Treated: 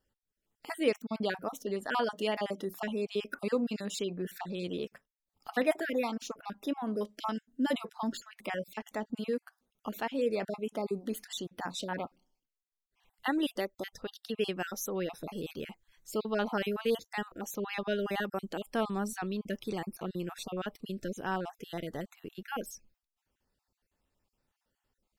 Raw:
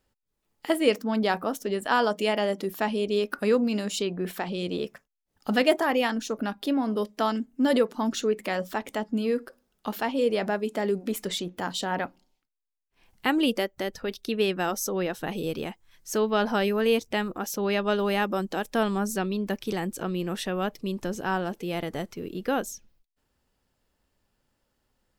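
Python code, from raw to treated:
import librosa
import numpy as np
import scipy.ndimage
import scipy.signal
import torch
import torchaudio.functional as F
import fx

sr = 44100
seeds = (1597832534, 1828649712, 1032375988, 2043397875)

y = fx.spec_dropout(x, sr, seeds[0], share_pct=33)
y = y * librosa.db_to_amplitude(-6.0)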